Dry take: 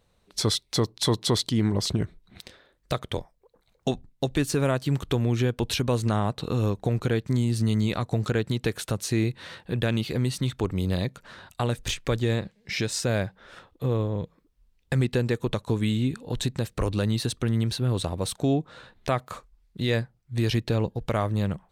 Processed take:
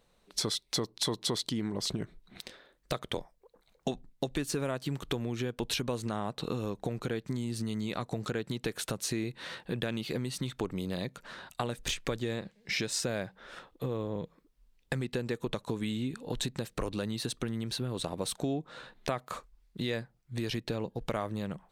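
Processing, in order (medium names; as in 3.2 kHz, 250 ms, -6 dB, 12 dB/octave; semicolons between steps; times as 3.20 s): compression 5:1, threshold -28 dBFS, peak gain reduction 9 dB; peaking EQ 82 Hz -14.5 dB 0.9 oct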